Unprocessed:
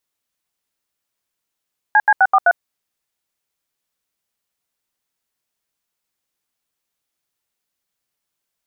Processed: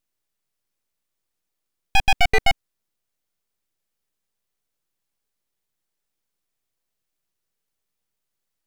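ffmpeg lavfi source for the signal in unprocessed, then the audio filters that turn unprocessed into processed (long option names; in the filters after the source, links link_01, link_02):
-f lavfi -i "aevalsrc='0.282*clip(min(mod(t,0.128),0.05-mod(t,0.128))/0.002,0,1)*(eq(floor(t/0.128),0)*(sin(2*PI*852*mod(t,0.128))+sin(2*PI*1633*mod(t,0.128)))+eq(floor(t/0.128),1)*(sin(2*PI*852*mod(t,0.128))+sin(2*PI*1633*mod(t,0.128)))+eq(floor(t/0.128),2)*(sin(2*PI*770*mod(t,0.128))+sin(2*PI*1477*mod(t,0.128)))+eq(floor(t/0.128),3)*(sin(2*PI*770*mod(t,0.128))+sin(2*PI*1209*mod(t,0.128)))+eq(floor(t/0.128),4)*(sin(2*PI*697*mod(t,0.128))+sin(2*PI*1477*mod(t,0.128))))':duration=0.64:sample_rate=44100"
-filter_complex "[0:a]equalizer=frequency=260:width=4.6:gain=-8,acrossover=split=580[link_01][link_02];[link_02]aeval=exprs='abs(val(0))':channel_layout=same[link_03];[link_01][link_03]amix=inputs=2:normalize=0"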